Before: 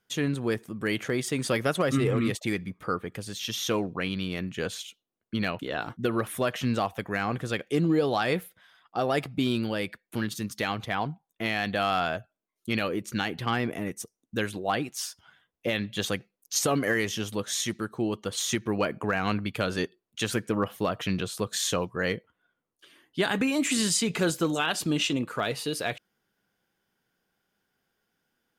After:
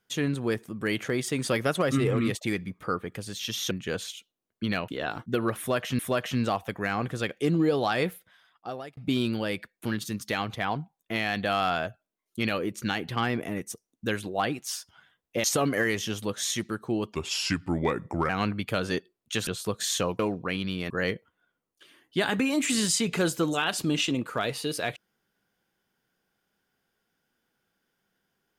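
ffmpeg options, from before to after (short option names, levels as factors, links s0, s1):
-filter_complex "[0:a]asplit=10[s0][s1][s2][s3][s4][s5][s6][s7][s8][s9];[s0]atrim=end=3.712[s10];[s1]atrim=start=4.418:end=6.702[s11];[s2]atrim=start=6.288:end=9.27,asetpts=PTS-STARTPTS,afade=t=out:st=1.932:d=1.05:c=qsin[s12];[s3]atrim=start=9.27:end=15.742,asetpts=PTS-STARTPTS,afade=t=in:d=0.004:c=hsin[s13];[s4]atrim=start=16.538:end=18.234[s14];[s5]atrim=start=18.23:end=19.16,asetpts=PTS-STARTPTS,asetrate=35280,aresample=44100,atrim=end_sample=51266,asetpts=PTS-STARTPTS[s15];[s6]atrim=start=19.156:end=20.342[s16];[s7]atrim=start=21.198:end=21.922[s17];[s8]atrim=start=3.708:end=4.422[s18];[s9]atrim=start=21.918[s19];[s10][s11]acrossfade=d=0.004:c1=hsin:c2=hsin[s20];[s12][s13]concat=n=2:v=0:a=1[s21];[s20][s21]acrossfade=d=0.004:c1=hsin:c2=hsin[s22];[s22][s14]acrossfade=d=0.004:c1=hsin:c2=hsin[s23];[s23][s15]acrossfade=d=0.004:c1=hsin:c2=hsin[s24];[s24][s16]acrossfade=d=0.004:c1=hsin:c2=hsin[s25];[s25][s17]acrossfade=d=0.004:c1=hsin:c2=hsin[s26];[s26][s18]acrossfade=d=0.004:c1=hsin:c2=hsin[s27];[s27][s19]acrossfade=d=0.004:c1=hsin:c2=hsin"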